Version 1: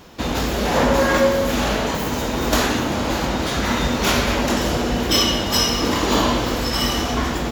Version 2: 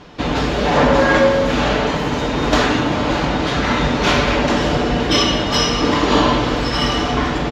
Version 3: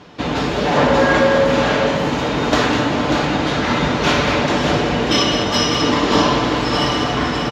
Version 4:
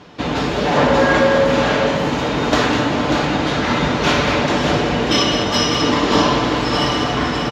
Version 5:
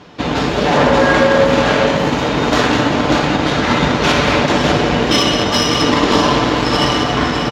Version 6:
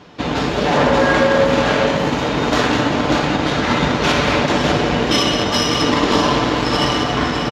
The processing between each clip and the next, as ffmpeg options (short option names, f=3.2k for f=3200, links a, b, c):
-af "lowpass=4.2k,aecho=1:1:6.8:0.37,volume=3.5dB"
-filter_complex "[0:a]highpass=75,asplit=2[a][b];[b]aecho=0:1:201|591:0.355|0.422[c];[a][c]amix=inputs=2:normalize=0,volume=-1dB"
-af anull
-af "aeval=exprs='0.841*(cos(1*acos(clip(val(0)/0.841,-1,1)))-cos(1*PI/2))+0.0376*(cos(7*acos(clip(val(0)/0.841,-1,1)))-cos(7*PI/2))':c=same,alimiter=level_in=6dB:limit=-1dB:release=50:level=0:latency=1,volume=-1dB"
-af "aresample=32000,aresample=44100,volume=-2.5dB"